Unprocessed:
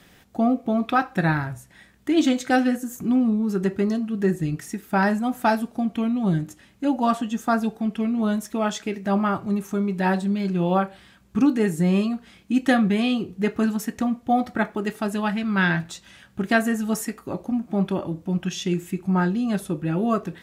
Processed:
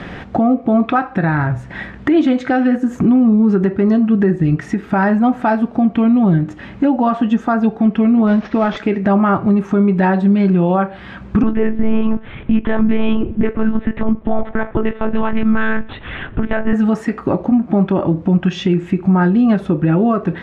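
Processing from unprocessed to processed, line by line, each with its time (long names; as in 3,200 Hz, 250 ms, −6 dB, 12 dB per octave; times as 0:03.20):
0:08.27–0:08.77: variable-slope delta modulation 32 kbit/s
0:11.43–0:16.73: one-pitch LPC vocoder at 8 kHz 220 Hz
whole clip: downward compressor 3 to 1, threshold −39 dBFS; low-pass filter 2,000 Hz 12 dB per octave; boost into a limiter +29 dB; level −4.5 dB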